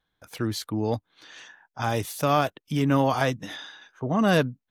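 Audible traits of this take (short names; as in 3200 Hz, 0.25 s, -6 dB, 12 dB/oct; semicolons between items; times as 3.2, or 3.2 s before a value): noise floor -82 dBFS; spectral tilt -5.0 dB/oct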